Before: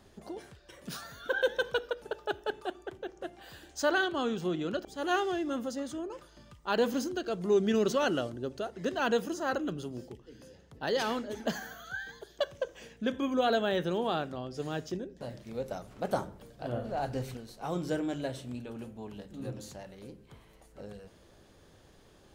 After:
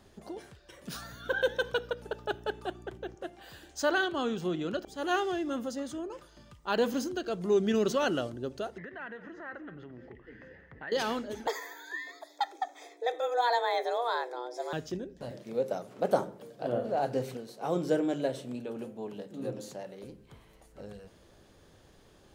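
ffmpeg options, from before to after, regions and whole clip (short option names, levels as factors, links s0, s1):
-filter_complex "[0:a]asettb=1/sr,asplit=3[s0][s1][s2];[s0]atrim=end=0.944[s3];[s1]atrim=start=0.94:end=3.15,asetpts=PTS-STARTPTS,afade=t=in:d=0.004:c=qsin,afade=t=out:st=2.206:d=0.004:c=qsin,aeval=exprs='val(0)+0.00447*(sin(2*PI*60*n/s)+sin(2*PI*2*60*n/s)/2+sin(2*PI*3*60*n/s)/3+sin(2*PI*4*60*n/s)/4+sin(2*PI*5*60*n/s)/5)':c=same,highpass=71[s4];[s2]atrim=start=3.146[s5];[s3][s4]acrossfade=d=0.004:c1=hsin:c2=qsin[s6];[s6][s5]acrossfade=d=0.004:c1=qsin:c2=hsin,asettb=1/sr,asplit=3[s7][s8][s9];[s7]atrim=end=8.784[s10];[s8]atrim=start=8.78:end=10.92,asetpts=PTS-STARTPTS,afade=t=in:d=0.004:c=qsin,afade=t=out:st=2.136:d=0.004:c=qsin,acompressor=threshold=0.00708:ratio=8:attack=3.2:release=140:knee=1:detection=peak,lowpass=f=1900:t=q:w=7.7,aecho=1:1:217:0.158,atrim=end_sample=94374[s11];[s9]atrim=start=10.916[s12];[s10][s11]acrossfade=d=0.004:c1=hsin:c2=qsin[s13];[s13][s12]acrossfade=d=0.004:c1=qsin:c2=hsin,asettb=1/sr,asplit=3[s14][s15][s16];[s14]atrim=end=11.474[s17];[s15]atrim=start=11.47:end=14.73,asetpts=PTS-STARTPTS,afade=t=in:d=0.004:c=qsin,afade=t=out:st=3.256:d=0.004:c=qsin,afreqshift=240,asuperstop=centerf=2900:order=12:qfactor=5.7[s18];[s16]atrim=start=14.726[s19];[s17][s18]acrossfade=d=0.004:c1=hsin:c2=qsin[s20];[s20][s19]acrossfade=d=0.004:c1=qsin:c2=hsin,asettb=1/sr,asplit=3[s21][s22][s23];[s21]atrim=end=15.314[s24];[s22]atrim=start=15.31:end=20.04,asetpts=PTS-STARTPTS,afade=t=in:d=0.004:c=qsin,afade=t=out:st=4.726:d=0.004:c=qsin,highpass=f=130:w=0.5412,highpass=f=130:w=1.3066,equalizer=f=480:w=1.2:g=7[s25];[s23]atrim=start=20.036[s26];[s24][s25]acrossfade=d=0.004:c1=hsin:c2=qsin[s27];[s27][s26]acrossfade=d=0.004:c1=qsin:c2=hsin"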